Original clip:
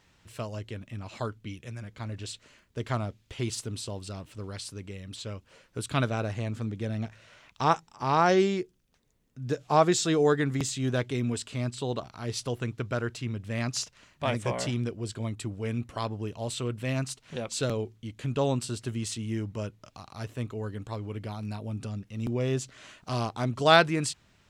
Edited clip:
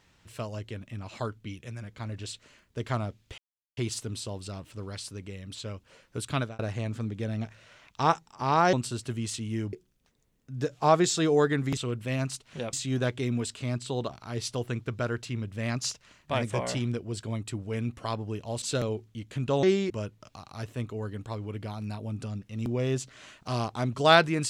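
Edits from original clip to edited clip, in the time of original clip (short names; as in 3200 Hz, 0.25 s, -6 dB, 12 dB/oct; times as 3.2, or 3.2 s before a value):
3.38 insert silence 0.39 s
5.82–6.2 fade out equal-power
8.34–8.61 swap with 18.51–19.51
16.54–17.5 move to 10.65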